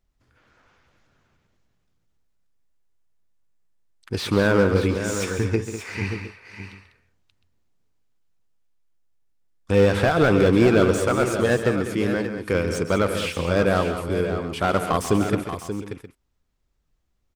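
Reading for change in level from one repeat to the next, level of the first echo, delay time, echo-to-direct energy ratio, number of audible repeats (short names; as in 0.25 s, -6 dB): no steady repeat, -11.5 dB, 0.139 s, -5.5 dB, 4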